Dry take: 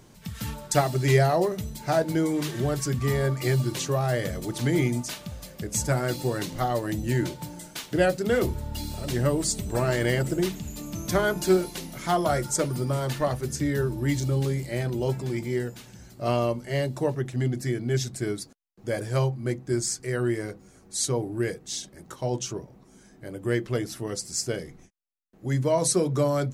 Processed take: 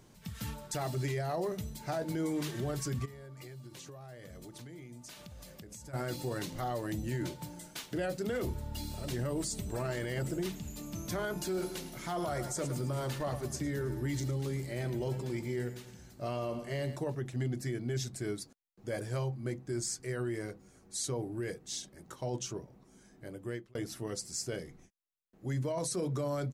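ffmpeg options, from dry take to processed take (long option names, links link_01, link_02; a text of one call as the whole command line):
ffmpeg -i in.wav -filter_complex "[0:a]asplit=3[link_01][link_02][link_03];[link_01]afade=type=out:start_time=3.04:duration=0.02[link_04];[link_02]acompressor=threshold=-38dB:ratio=16:attack=3.2:release=140:knee=1:detection=peak,afade=type=in:start_time=3.04:duration=0.02,afade=type=out:start_time=5.93:duration=0.02[link_05];[link_03]afade=type=in:start_time=5.93:duration=0.02[link_06];[link_04][link_05][link_06]amix=inputs=3:normalize=0,asplit=3[link_07][link_08][link_09];[link_07]afade=type=out:start_time=11.54:duration=0.02[link_10];[link_08]aecho=1:1:106|212|318|424|530:0.2|0.0978|0.0479|0.0235|0.0115,afade=type=in:start_time=11.54:duration=0.02,afade=type=out:start_time=16.95:duration=0.02[link_11];[link_09]afade=type=in:start_time=16.95:duration=0.02[link_12];[link_10][link_11][link_12]amix=inputs=3:normalize=0,asplit=2[link_13][link_14];[link_13]atrim=end=23.75,asetpts=PTS-STARTPTS,afade=type=out:start_time=23.27:duration=0.48[link_15];[link_14]atrim=start=23.75,asetpts=PTS-STARTPTS,afade=type=in:duration=0.004:curve=hsin[link_16];[link_15][link_16]concat=n=2:v=0:a=1,alimiter=limit=-20.5dB:level=0:latency=1:release=11,volume=-6.5dB" out.wav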